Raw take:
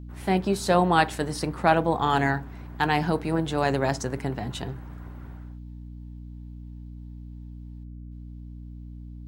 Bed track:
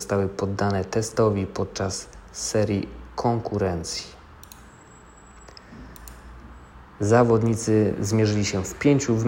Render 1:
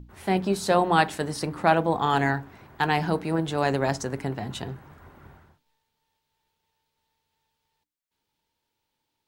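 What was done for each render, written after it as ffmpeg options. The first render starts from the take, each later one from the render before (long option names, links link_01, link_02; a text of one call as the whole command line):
ffmpeg -i in.wav -af "bandreject=frequency=60:width_type=h:width=6,bandreject=frequency=120:width_type=h:width=6,bandreject=frequency=180:width_type=h:width=6,bandreject=frequency=240:width_type=h:width=6,bandreject=frequency=300:width_type=h:width=6" out.wav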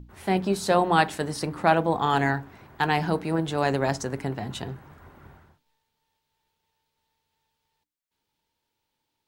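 ffmpeg -i in.wav -af anull out.wav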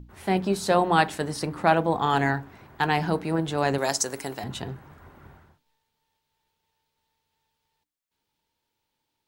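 ffmpeg -i in.wav -filter_complex "[0:a]asettb=1/sr,asplit=3[link_01][link_02][link_03];[link_01]atrim=end=3.784[link_04];[link_02]atrim=start=3.78:end=4.44,asetpts=PTS-STARTPTS,afade=type=in:duration=0.004:curve=qsin,afade=type=out:start_time=0.656:duration=0.004:curve=qsin,bass=frequency=250:gain=-12,treble=frequency=4000:gain=14[link_05];[link_03]atrim=start=4.436[link_06];[link_04][link_05]acrossfade=duration=0.004:curve1=hsin:curve2=qsin[link_07];[link_07][link_06]acrossfade=duration=0.004:curve1=qsin:curve2=hsin" out.wav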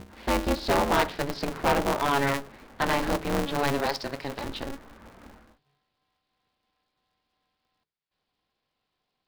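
ffmpeg -i in.wav -af "aresample=11025,asoftclip=type=tanh:threshold=-15dB,aresample=44100,aeval=exprs='val(0)*sgn(sin(2*PI*140*n/s))':channel_layout=same" out.wav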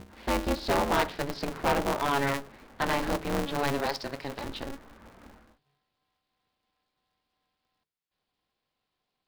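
ffmpeg -i in.wav -af "volume=-2.5dB" out.wav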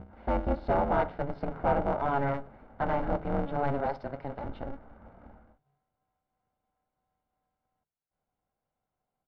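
ffmpeg -i in.wav -af "lowpass=1100,aecho=1:1:1.4:0.39" out.wav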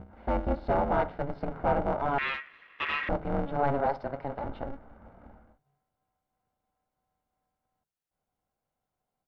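ffmpeg -i in.wav -filter_complex "[0:a]asettb=1/sr,asplit=3[link_01][link_02][link_03];[link_01]atrim=end=2.184[link_04];[link_02]atrim=start=2.18:end=3.09,asetpts=PTS-STARTPTS,afade=type=in:duration=0.004:curve=qsin,afade=type=out:start_time=0.906:duration=0.004:curve=qsin,aeval=exprs='val(0)*sin(2*PI*1900*n/s)':channel_layout=same[link_05];[link_03]atrim=start=3.086[link_06];[link_04][link_05]acrossfade=duration=0.004:curve1=hsin:curve2=qsin[link_07];[link_07][link_06]acrossfade=duration=0.004:curve1=qsin:curve2=hsin,asettb=1/sr,asplit=3[link_08][link_09][link_10];[link_08]atrim=end=3.594[link_11];[link_09]atrim=start=3.59:end=4.67,asetpts=PTS-STARTPTS,afade=type=in:duration=0.004:curve=qsin,afade=type=out:start_time=1.076:duration=0.004:curve=qsin,equalizer=frequency=860:width=0.63:gain=4[link_12];[link_10]atrim=start=4.666[link_13];[link_11][link_12]acrossfade=duration=0.004:curve1=hsin:curve2=qsin[link_14];[link_14][link_13]acrossfade=duration=0.004:curve1=qsin:curve2=hsin" out.wav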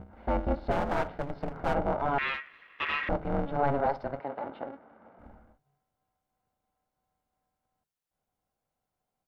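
ffmpeg -i in.wav -filter_complex "[0:a]asplit=3[link_01][link_02][link_03];[link_01]afade=type=out:start_time=0.7:duration=0.02[link_04];[link_02]aeval=exprs='clip(val(0),-1,0.0178)':channel_layout=same,afade=type=in:start_time=0.7:duration=0.02,afade=type=out:start_time=1.73:duration=0.02[link_05];[link_03]afade=type=in:start_time=1.73:duration=0.02[link_06];[link_04][link_05][link_06]amix=inputs=3:normalize=0,asettb=1/sr,asplit=3[link_07][link_08][link_09];[link_07]atrim=end=4.204[link_10];[link_08]atrim=start=4.2:end=5.19,asetpts=PTS-STARTPTS,afade=type=in:duration=0.004:curve=qsin,afade=type=out:start_time=0.986:duration=0.004:curve=qsin,highpass=250,lowpass=3800[link_11];[link_09]atrim=start=5.186[link_12];[link_10][link_11]acrossfade=duration=0.004:curve1=hsin:curve2=qsin[link_13];[link_13][link_12]acrossfade=duration=0.004:curve1=qsin:curve2=hsin" out.wav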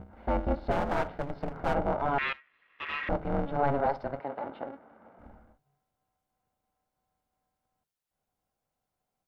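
ffmpeg -i in.wav -filter_complex "[0:a]asplit=2[link_01][link_02];[link_01]atrim=end=2.33,asetpts=PTS-STARTPTS,afade=type=out:start_time=2.326:duration=0.004:curve=hsin:silence=0.141254[link_03];[link_02]atrim=start=2.33,asetpts=PTS-STARTPTS,afade=type=in:duration=0.8:curve=qua:silence=0.141254[link_04];[link_03][link_04]concat=n=2:v=0:a=1" out.wav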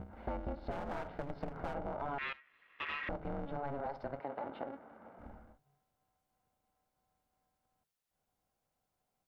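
ffmpeg -i in.wav -af "alimiter=limit=-21dB:level=0:latency=1,acompressor=threshold=-37dB:ratio=5" out.wav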